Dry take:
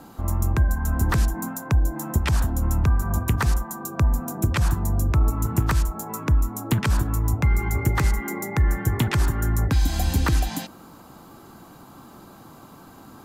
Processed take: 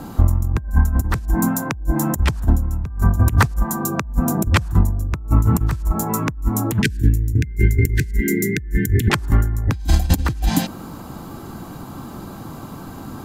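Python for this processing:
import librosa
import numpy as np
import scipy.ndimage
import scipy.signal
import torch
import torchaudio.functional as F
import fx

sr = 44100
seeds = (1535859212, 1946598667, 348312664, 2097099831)

y = fx.low_shelf(x, sr, hz=240.0, db=9.0)
y = fx.over_compress(y, sr, threshold_db=-18.0, ratio=-0.5)
y = fx.brickwall_bandstop(y, sr, low_hz=460.0, high_hz=1500.0, at=(6.82, 9.1))
y = y * librosa.db_to_amplitude(2.0)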